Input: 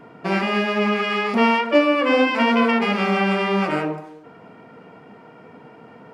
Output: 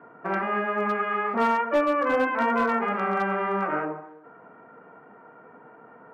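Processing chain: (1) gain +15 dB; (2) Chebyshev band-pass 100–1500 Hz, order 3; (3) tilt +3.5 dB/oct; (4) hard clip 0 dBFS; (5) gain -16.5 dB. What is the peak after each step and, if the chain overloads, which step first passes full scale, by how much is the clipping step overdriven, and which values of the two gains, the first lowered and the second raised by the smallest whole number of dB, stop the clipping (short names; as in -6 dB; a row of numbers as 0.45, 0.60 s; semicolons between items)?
+9.5, +8.5, +6.0, 0.0, -16.5 dBFS; step 1, 6.0 dB; step 1 +9 dB, step 5 -10.5 dB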